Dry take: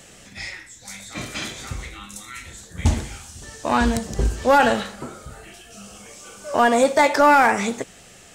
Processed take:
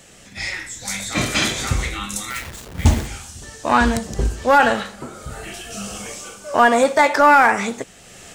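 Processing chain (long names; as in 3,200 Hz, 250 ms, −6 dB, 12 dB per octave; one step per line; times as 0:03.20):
0:02.30–0:03.07: hold until the input has moved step −36 dBFS
dynamic equaliser 1,400 Hz, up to +5 dB, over −29 dBFS, Q 0.84
automatic gain control gain up to 12 dB
level −1 dB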